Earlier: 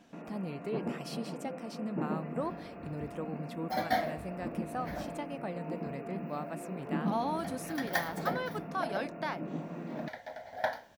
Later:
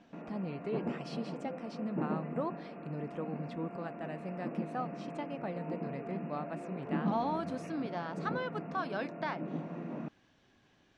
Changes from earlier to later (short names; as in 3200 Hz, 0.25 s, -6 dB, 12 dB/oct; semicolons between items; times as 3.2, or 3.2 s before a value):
second sound: muted; master: add air absorption 120 m